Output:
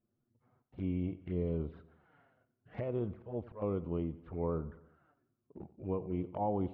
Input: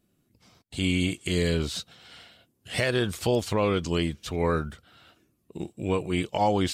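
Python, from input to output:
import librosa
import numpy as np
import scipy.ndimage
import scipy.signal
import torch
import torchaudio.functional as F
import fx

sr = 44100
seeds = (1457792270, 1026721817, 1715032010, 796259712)

y = scipy.signal.sosfilt(scipy.signal.butter(4, 1500.0, 'lowpass', fs=sr, output='sos'), x)
y = fx.auto_swell(y, sr, attack_ms=211.0, at=(3.13, 3.62))
y = fx.env_flanger(y, sr, rest_ms=8.7, full_db=-24.5)
y = fx.echo_feedback(y, sr, ms=90, feedback_pct=52, wet_db=-18)
y = y * librosa.db_to_amplitude(-8.5)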